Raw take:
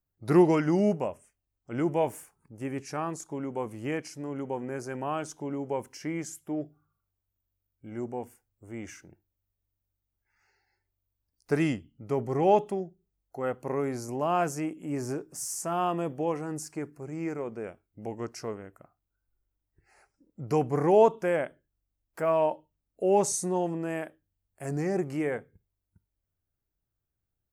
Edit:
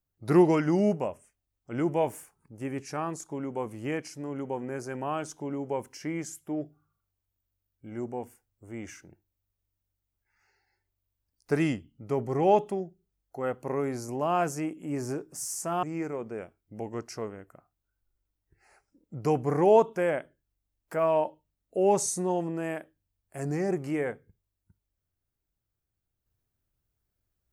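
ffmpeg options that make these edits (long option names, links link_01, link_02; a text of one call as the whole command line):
ffmpeg -i in.wav -filter_complex "[0:a]asplit=2[link_01][link_02];[link_01]atrim=end=15.832[link_03];[link_02]atrim=start=17.088[link_04];[link_03][link_04]acrossfade=duration=0.004:curve1=hsin:curve2=hsin" out.wav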